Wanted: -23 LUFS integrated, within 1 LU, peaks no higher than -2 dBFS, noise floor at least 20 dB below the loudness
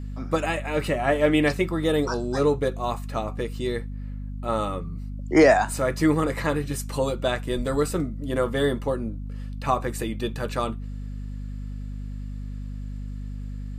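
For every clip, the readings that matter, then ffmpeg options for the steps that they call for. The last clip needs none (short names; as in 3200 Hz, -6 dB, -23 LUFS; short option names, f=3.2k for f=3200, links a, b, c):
hum 50 Hz; harmonics up to 250 Hz; hum level -31 dBFS; loudness -25.0 LUFS; peak -6.5 dBFS; loudness target -23.0 LUFS
-> -af "bandreject=f=50:t=h:w=4,bandreject=f=100:t=h:w=4,bandreject=f=150:t=h:w=4,bandreject=f=200:t=h:w=4,bandreject=f=250:t=h:w=4"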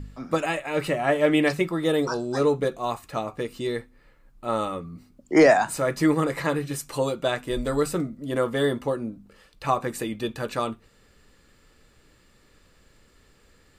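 hum none; loudness -25.0 LUFS; peak -7.0 dBFS; loudness target -23.0 LUFS
-> -af "volume=2dB"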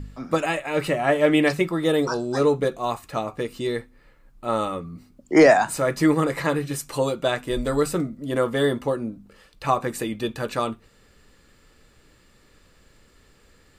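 loudness -23.0 LUFS; peak -5.0 dBFS; noise floor -57 dBFS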